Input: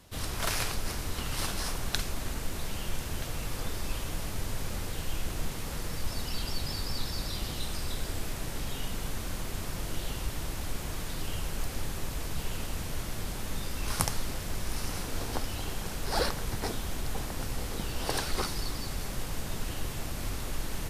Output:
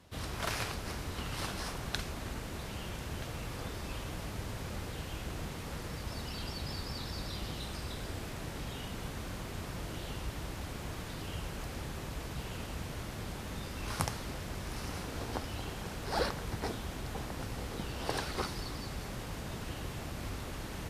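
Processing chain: HPF 50 Hz; high shelf 5400 Hz -9.5 dB; gain -2 dB

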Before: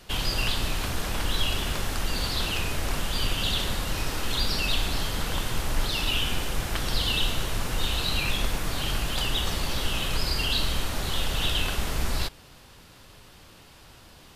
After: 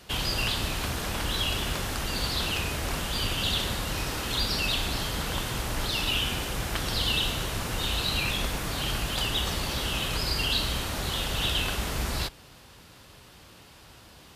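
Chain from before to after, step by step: HPF 42 Hz

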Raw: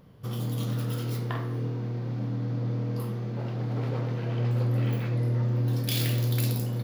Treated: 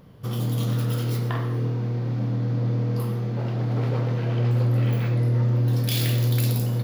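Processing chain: in parallel at -1 dB: limiter -21.5 dBFS, peak gain reduction 8 dB; on the sum: reverb RT60 0.25 s, pre-delay 80 ms, DRR 13 dB; gain -1 dB

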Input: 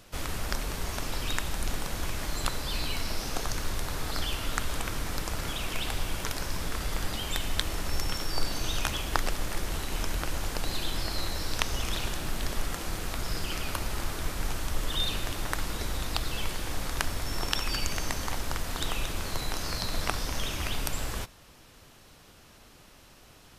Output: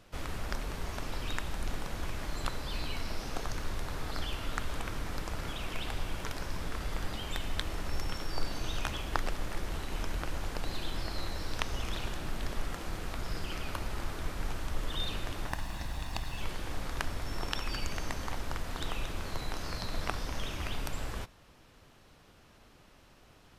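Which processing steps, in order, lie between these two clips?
15.49–16.41 minimum comb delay 1.1 ms; high shelf 4600 Hz -9.5 dB; gain -3.5 dB

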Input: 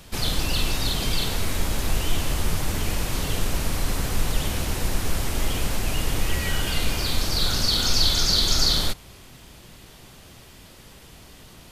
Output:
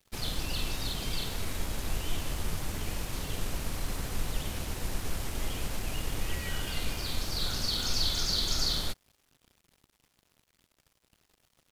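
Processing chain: crossover distortion -42 dBFS; gain -8.5 dB

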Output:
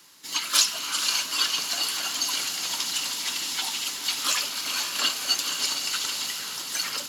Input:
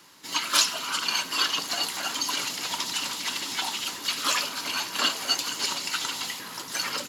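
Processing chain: high shelf 2700 Hz +9 dB; notch 950 Hz, Q 29; on a send: diffused feedback echo 0.495 s, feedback 47%, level -7 dB; on the sum: gain -5.5 dB

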